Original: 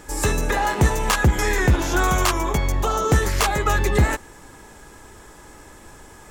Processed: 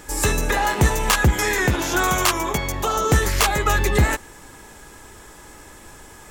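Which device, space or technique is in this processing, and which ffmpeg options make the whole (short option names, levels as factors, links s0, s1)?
presence and air boost: -filter_complex "[0:a]asettb=1/sr,asplit=3[s0][s1][s2];[s0]atrim=end=1.344[s3];[s1]atrim=start=1.34:end=2.97,asetpts=PTS-STARTPTS,afade=t=in:d=0.004:c=qsin,afade=t=out:st=1.626:d=0.004:c=qsin,highpass=f=120:p=1[s4];[s2]atrim=start=2.966[s5];[s3][s4]acrossfade=d=0.004:c1=hsin:c2=qsin[s6];[s6][s5]acrossfade=d=0.004:c1=qsin:c2=hsin,equalizer=f=2900:t=o:w=1.8:g=3,highshelf=f=9400:g=7"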